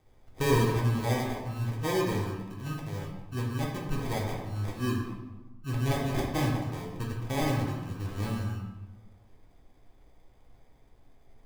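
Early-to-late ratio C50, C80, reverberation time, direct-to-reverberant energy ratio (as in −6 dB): 2.5 dB, 5.0 dB, 1.0 s, −3.5 dB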